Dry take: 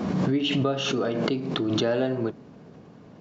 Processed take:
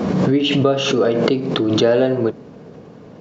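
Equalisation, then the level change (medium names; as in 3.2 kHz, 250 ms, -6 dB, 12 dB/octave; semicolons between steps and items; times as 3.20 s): peaking EQ 480 Hz +6 dB 0.51 oct; +7.0 dB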